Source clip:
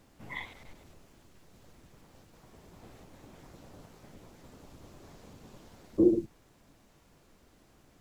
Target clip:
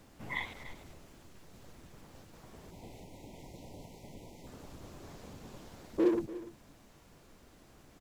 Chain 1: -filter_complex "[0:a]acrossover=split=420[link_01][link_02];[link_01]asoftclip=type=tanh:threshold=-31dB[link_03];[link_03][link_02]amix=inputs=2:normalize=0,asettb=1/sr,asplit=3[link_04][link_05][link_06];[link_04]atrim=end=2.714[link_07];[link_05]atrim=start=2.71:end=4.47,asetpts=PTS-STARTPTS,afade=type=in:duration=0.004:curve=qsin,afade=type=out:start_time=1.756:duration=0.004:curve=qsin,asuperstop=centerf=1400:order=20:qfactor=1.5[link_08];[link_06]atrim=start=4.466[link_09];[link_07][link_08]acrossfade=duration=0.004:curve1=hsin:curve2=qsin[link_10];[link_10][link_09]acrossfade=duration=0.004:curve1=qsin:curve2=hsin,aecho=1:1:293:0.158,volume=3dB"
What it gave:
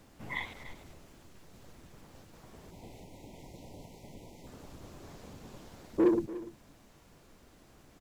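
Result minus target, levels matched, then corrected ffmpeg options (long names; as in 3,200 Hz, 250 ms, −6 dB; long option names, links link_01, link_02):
soft clipping: distortion −5 dB
-filter_complex "[0:a]acrossover=split=420[link_01][link_02];[link_01]asoftclip=type=tanh:threshold=-38.5dB[link_03];[link_03][link_02]amix=inputs=2:normalize=0,asettb=1/sr,asplit=3[link_04][link_05][link_06];[link_04]atrim=end=2.714[link_07];[link_05]atrim=start=2.71:end=4.47,asetpts=PTS-STARTPTS,afade=type=in:duration=0.004:curve=qsin,afade=type=out:start_time=1.756:duration=0.004:curve=qsin,asuperstop=centerf=1400:order=20:qfactor=1.5[link_08];[link_06]atrim=start=4.466[link_09];[link_07][link_08]acrossfade=duration=0.004:curve1=hsin:curve2=qsin[link_10];[link_10][link_09]acrossfade=duration=0.004:curve1=qsin:curve2=hsin,aecho=1:1:293:0.158,volume=3dB"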